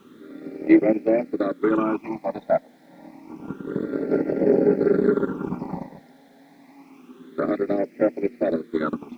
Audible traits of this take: phasing stages 8, 0.28 Hz, lowest notch 350–1100 Hz; a quantiser's noise floor 12-bit, dither none

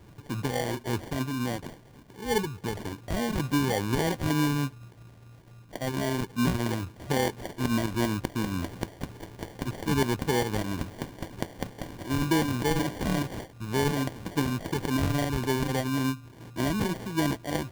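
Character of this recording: phasing stages 4, 3.5 Hz, lowest notch 550–1100 Hz; aliases and images of a low sample rate 1.3 kHz, jitter 0%

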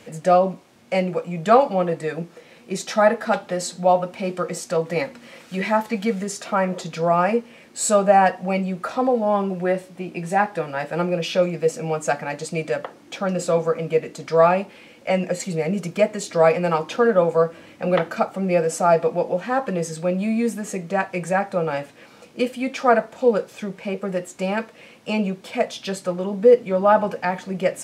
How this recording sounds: noise floor -49 dBFS; spectral tilt -5.5 dB/octave

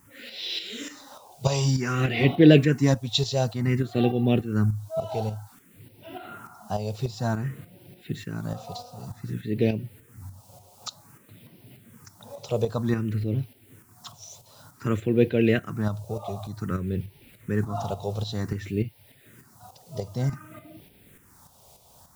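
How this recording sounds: a quantiser's noise floor 10-bit, dither triangular; tremolo saw up 3.4 Hz, depth 55%; phasing stages 4, 0.54 Hz, lowest notch 280–1200 Hz

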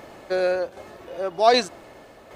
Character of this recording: tremolo saw down 1.3 Hz, depth 50%

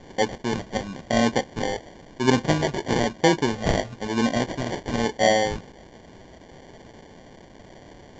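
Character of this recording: a quantiser's noise floor 8-bit, dither triangular; phasing stages 2, 1 Hz, lowest notch 310–2100 Hz; aliases and images of a low sample rate 1.3 kHz, jitter 0%; µ-law

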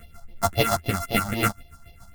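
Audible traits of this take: a buzz of ramps at a fixed pitch in blocks of 64 samples; phasing stages 4, 3.8 Hz, lowest notch 400–1400 Hz; chopped level 7 Hz, depth 60%, duty 30%; a shimmering, thickened sound

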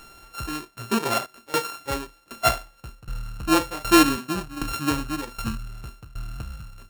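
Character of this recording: a buzz of ramps at a fixed pitch in blocks of 32 samples; tremolo saw down 1.3 Hz, depth 90%

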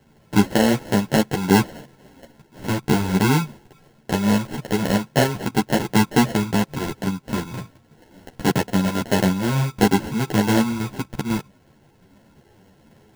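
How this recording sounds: phasing stages 8, 0.25 Hz, lowest notch 720–1600 Hz; aliases and images of a low sample rate 1.2 kHz, jitter 0%; a shimmering, thickened sound

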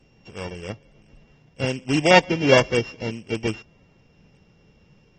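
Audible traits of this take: a buzz of ramps at a fixed pitch in blocks of 16 samples; AAC

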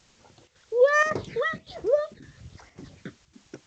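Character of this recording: phasing stages 12, 1.2 Hz, lowest notch 790–4000 Hz; a quantiser's noise floor 10-bit, dither triangular; chopped level 1.8 Hz, depth 65%, duty 85%; G.722

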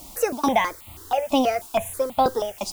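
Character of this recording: tremolo saw down 2.3 Hz, depth 100%; a quantiser's noise floor 8-bit, dither triangular; notches that jump at a steady rate 6.2 Hz 440–1600 Hz

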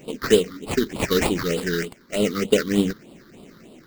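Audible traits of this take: aliases and images of a low sample rate 3.4 kHz, jitter 20%; phasing stages 6, 3.3 Hz, lowest notch 670–1700 Hz; tremolo saw down 1.8 Hz, depth 30%

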